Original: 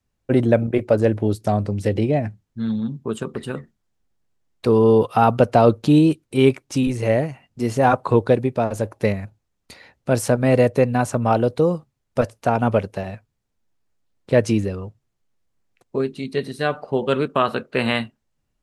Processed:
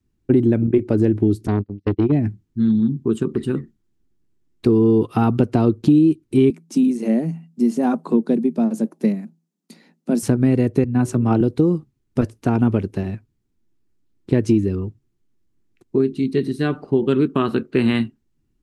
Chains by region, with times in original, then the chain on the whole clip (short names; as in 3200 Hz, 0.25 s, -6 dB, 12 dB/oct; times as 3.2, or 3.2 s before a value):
1.47–2.12 gate -21 dBFS, range -42 dB + resonant high shelf 5800 Hz -10.5 dB, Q 1.5 + core saturation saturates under 660 Hz
6.5–10.23 rippled Chebyshev high-pass 160 Hz, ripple 9 dB + tone controls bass +7 dB, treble +9 dB
10.84–11.41 de-hum 53.53 Hz, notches 11 + three-band expander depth 70%
whole clip: resonant low shelf 440 Hz +8 dB, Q 3; compressor 4:1, threshold -10 dBFS; gain -2.5 dB